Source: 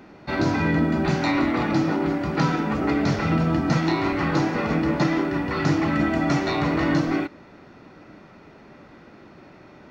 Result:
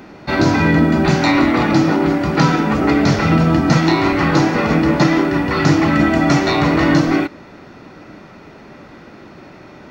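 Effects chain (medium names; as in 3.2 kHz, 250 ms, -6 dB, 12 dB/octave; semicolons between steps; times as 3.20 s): treble shelf 5.1 kHz +4.5 dB; trim +8 dB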